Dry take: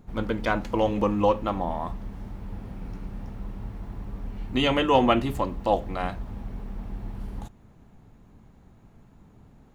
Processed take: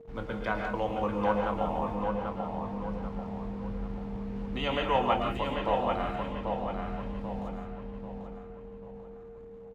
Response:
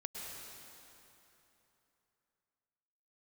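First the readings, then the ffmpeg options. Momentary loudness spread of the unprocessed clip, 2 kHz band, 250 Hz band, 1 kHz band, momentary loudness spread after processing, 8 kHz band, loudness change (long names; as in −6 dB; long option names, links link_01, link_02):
17 LU, −3.5 dB, −5.0 dB, −2.5 dB, 17 LU, can't be measured, −5.0 dB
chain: -filter_complex "[0:a]lowshelf=frequency=110:gain=-3.5,asplit=2[link_01][link_02];[link_02]adelay=25,volume=-12.5dB[link_03];[link_01][link_03]amix=inputs=2:normalize=0,acrossover=split=140|490|2900[link_04][link_05][link_06][link_07];[link_05]acompressor=threshold=-38dB:ratio=6[link_08];[link_04][link_08][link_06][link_07]amix=inputs=4:normalize=0,acrusher=bits=7:mix=0:aa=0.5,asplit=2[link_09][link_10];[link_10]adelay=789,lowpass=frequency=3500:poles=1,volume=-4dB,asplit=2[link_11][link_12];[link_12]adelay=789,lowpass=frequency=3500:poles=1,volume=0.43,asplit=2[link_13][link_14];[link_14]adelay=789,lowpass=frequency=3500:poles=1,volume=0.43,asplit=2[link_15][link_16];[link_16]adelay=789,lowpass=frequency=3500:poles=1,volume=0.43,asplit=2[link_17][link_18];[link_18]adelay=789,lowpass=frequency=3500:poles=1,volume=0.43[link_19];[link_09][link_11][link_13][link_15][link_17][link_19]amix=inputs=6:normalize=0,aeval=exprs='val(0)+0.00631*sin(2*PI*460*n/s)':channel_layout=same,aemphasis=mode=reproduction:type=75kf[link_20];[1:a]atrim=start_sample=2205,afade=type=out:start_time=0.24:duration=0.01,atrim=end_sample=11025[link_21];[link_20][link_21]afir=irnorm=-1:irlink=0"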